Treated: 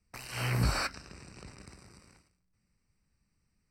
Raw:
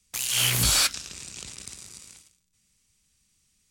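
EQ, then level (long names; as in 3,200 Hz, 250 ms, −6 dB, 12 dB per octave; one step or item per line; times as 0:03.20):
moving average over 13 samples
0.0 dB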